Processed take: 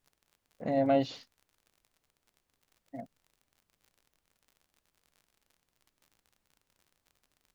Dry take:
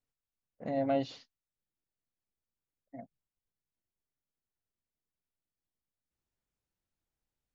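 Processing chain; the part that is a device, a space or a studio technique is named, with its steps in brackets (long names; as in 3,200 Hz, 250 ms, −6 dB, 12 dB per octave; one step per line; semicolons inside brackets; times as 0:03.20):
vinyl LP (surface crackle 52 per second −53 dBFS; pink noise bed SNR 43 dB)
level +4 dB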